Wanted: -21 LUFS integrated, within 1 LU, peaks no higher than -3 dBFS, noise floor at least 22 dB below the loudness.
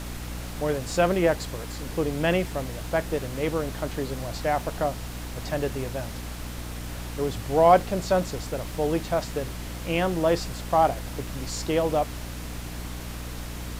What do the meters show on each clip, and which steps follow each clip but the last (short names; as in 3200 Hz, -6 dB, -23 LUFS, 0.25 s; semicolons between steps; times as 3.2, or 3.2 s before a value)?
hum 60 Hz; harmonics up to 300 Hz; hum level -34 dBFS; noise floor -36 dBFS; noise floor target -50 dBFS; loudness -27.5 LUFS; peak -6.0 dBFS; loudness target -21.0 LUFS
-> de-hum 60 Hz, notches 5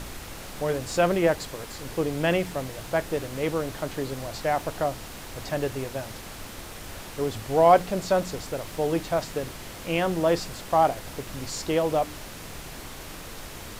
hum none; noise floor -40 dBFS; noise floor target -49 dBFS
-> noise print and reduce 9 dB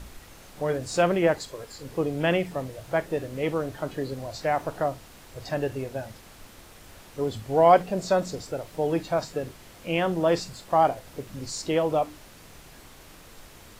noise floor -49 dBFS; loudness -26.5 LUFS; peak -6.5 dBFS; loudness target -21.0 LUFS
-> gain +5.5 dB; limiter -3 dBFS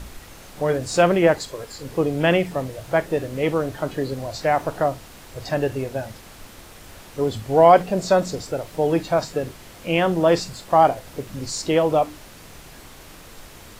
loudness -21.5 LUFS; peak -3.0 dBFS; noise floor -44 dBFS